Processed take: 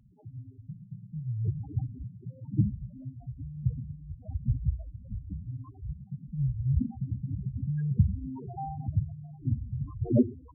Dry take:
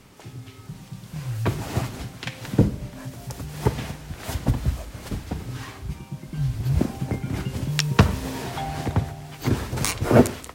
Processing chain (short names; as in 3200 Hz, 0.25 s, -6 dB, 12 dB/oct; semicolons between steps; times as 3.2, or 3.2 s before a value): LPF 1500 Hz 12 dB/oct; loudest bins only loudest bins 4; gain -3.5 dB